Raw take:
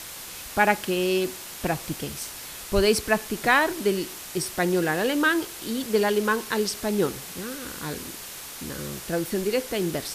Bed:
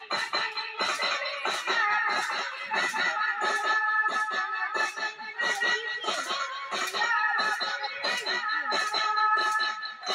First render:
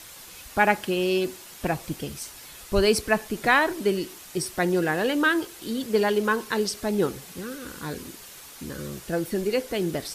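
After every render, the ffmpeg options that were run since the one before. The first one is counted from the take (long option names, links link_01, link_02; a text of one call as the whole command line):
ffmpeg -i in.wav -af "afftdn=noise_reduction=7:noise_floor=-39" out.wav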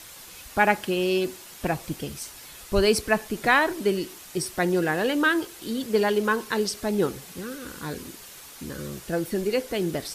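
ffmpeg -i in.wav -af anull out.wav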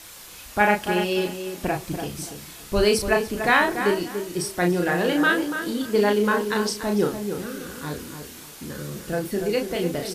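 ffmpeg -i in.wav -filter_complex "[0:a]asplit=2[link_01][link_02];[link_02]adelay=34,volume=-4dB[link_03];[link_01][link_03]amix=inputs=2:normalize=0,asplit=2[link_04][link_05];[link_05]adelay=289,lowpass=frequency=2100:poles=1,volume=-7.5dB,asplit=2[link_06][link_07];[link_07]adelay=289,lowpass=frequency=2100:poles=1,volume=0.27,asplit=2[link_08][link_09];[link_09]adelay=289,lowpass=frequency=2100:poles=1,volume=0.27[link_10];[link_04][link_06][link_08][link_10]amix=inputs=4:normalize=0" out.wav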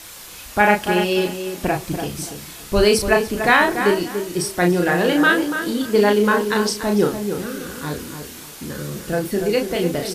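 ffmpeg -i in.wav -af "volume=4.5dB,alimiter=limit=-2dB:level=0:latency=1" out.wav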